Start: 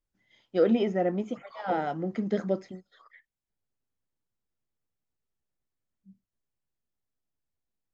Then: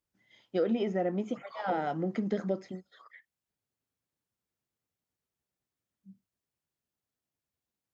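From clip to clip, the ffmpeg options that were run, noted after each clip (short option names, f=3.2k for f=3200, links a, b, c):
-af "highpass=74,acompressor=threshold=-30dB:ratio=2.5,volume=1.5dB"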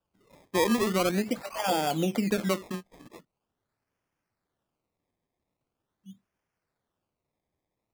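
-filter_complex "[0:a]asplit=2[a][b];[b]alimiter=level_in=2dB:limit=-24dB:level=0:latency=1:release=149,volume=-2dB,volume=0dB[c];[a][c]amix=inputs=2:normalize=0,acrusher=samples=21:mix=1:aa=0.000001:lfo=1:lforange=21:lforate=0.43"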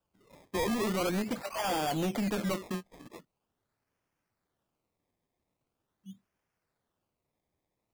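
-af "asoftclip=type=hard:threshold=-28dB"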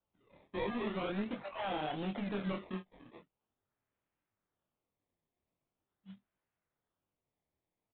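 -af "flanger=delay=20:depth=6.8:speed=1.4,aresample=8000,acrusher=bits=4:mode=log:mix=0:aa=0.000001,aresample=44100,volume=-3.5dB"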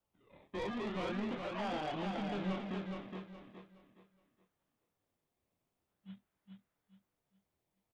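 -filter_complex "[0:a]asoftclip=type=tanh:threshold=-37dB,asplit=2[a][b];[b]aecho=0:1:418|836|1254|1672:0.596|0.185|0.0572|0.0177[c];[a][c]amix=inputs=2:normalize=0,volume=2dB"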